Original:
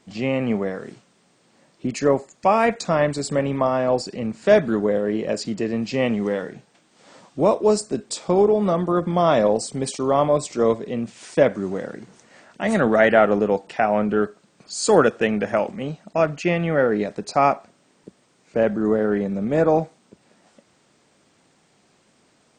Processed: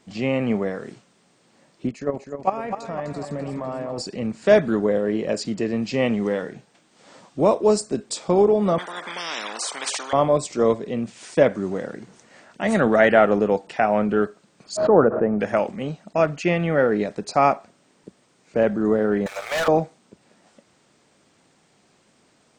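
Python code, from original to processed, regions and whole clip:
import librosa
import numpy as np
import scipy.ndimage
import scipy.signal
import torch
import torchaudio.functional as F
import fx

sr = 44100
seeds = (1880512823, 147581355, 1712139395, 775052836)

y = fx.chain(x, sr, fx.high_shelf(hz=2300.0, db=-7.0),
    fx.level_steps(step_db=15),
    fx.echo_warbled(ms=251, feedback_pct=54, rate_hz=2.8, cents=56, wet_db=-8.0), at=(1.89, 3.98))
y = fx.chain(y, sr, fx.ladder_highpass(hz=860.0, resonance_pct=60),
    fx.high_shelf(hz=2200.0, db=-11.0),
    fx.spectral_comp(ratio=10.0), at=(8.78, 10.13))
y = fx.lowpass(y, sr, hz=1200.0, slope=24, at=(14.75, 15.38), fade=0.02)
y = fx.dmg_tone(y, sr, hz=630.0, level_db=-46.0, at=(14.75, 15.38), fade=0.02)
y = fx.pre_swell(y, sr, db_per_s=73.0, at=(14.75, 15.38), fade=0.02)
y = fx.chain(y, sr, fx.bessel_highpass(hz=1200.0, order=8),
    fx.leveller(passes=5), at=(19.26, 19.68))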